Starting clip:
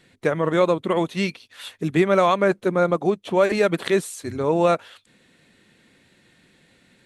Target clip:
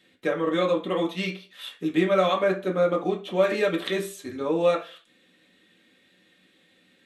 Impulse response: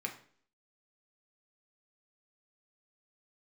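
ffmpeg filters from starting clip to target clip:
-filter_complex "[0:a]lowshelf=f=240:g=-6.5,bandreject=f=900:w=25[s0];[1:a]atrim=start_sample=2205,asetrate=66150,aresample=44100[s1];[s0][s1]afir=irnorm=-1:irlink=0"

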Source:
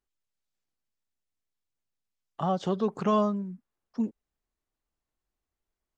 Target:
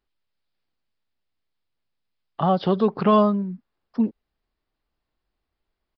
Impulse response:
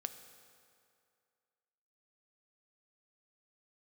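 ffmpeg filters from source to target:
-af "aresample=11025,aresample=44100,volume=2.37"

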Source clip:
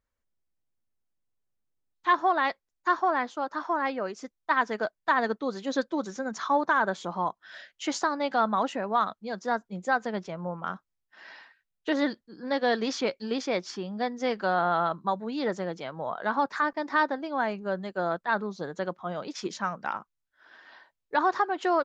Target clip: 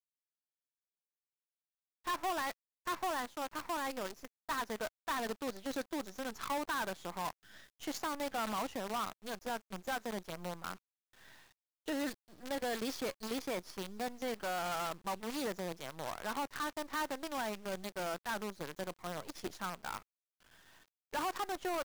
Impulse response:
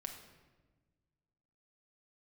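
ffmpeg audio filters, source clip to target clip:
-af "asoftclip=type=tanh:threshold=0.0562,acrusher=bits=6:dc=4:mix=0:aa=0.000001,volume=0.422"

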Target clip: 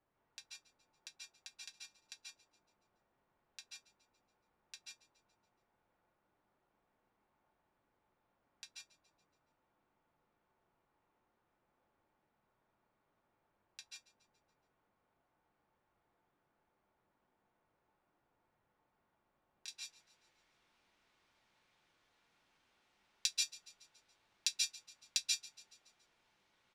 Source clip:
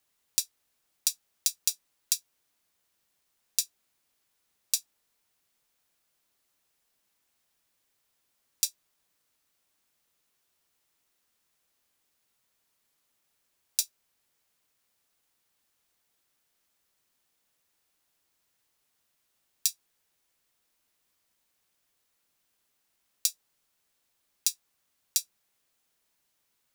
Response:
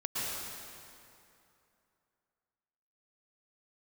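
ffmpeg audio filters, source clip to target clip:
-filter_complex "[0:a]asetnsamples=n=441:p=0,asendcmd='19.68 lowpass f 3300',lowpass=1100,aecho=1:1:141|282|423|564|705:0.1|0.057|0.0325|0.0185|0.0106[s0];[1:a]atrim=start_sample=2205,afade=t=out:st=0.19:d=0.01,atrim=end_sample=8820,asetrate=36162,aresample=44100[s1];[s0][s1]afir=irnorm=-1:irlink=0,volume=1.78"

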